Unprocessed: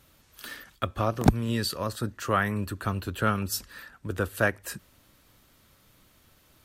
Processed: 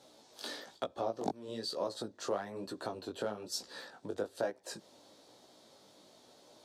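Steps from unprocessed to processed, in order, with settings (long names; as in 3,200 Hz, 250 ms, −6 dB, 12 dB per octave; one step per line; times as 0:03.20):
high-shelf EQ 5,900 Hz −12 dB
in parallel at −11.5 dB: slack as between gear wheels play −18 dBFS
on the sum: chorus effect 1.1 Hz, delay 15.5 ms, depth 4.9 ms
downward compressor 4 to 1, threshold −42 dBFS, peak gain reduction 22 dB
band-pass filter 410–8,000 Hz
flat-topped bell 1,800 Hz −14 dB
level +12.5 dB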